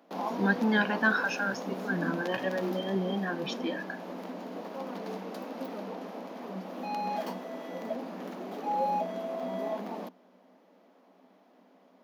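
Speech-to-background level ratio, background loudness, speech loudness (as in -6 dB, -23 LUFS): 6.0 dB, -36.5 LUFS, -30.5 LUFS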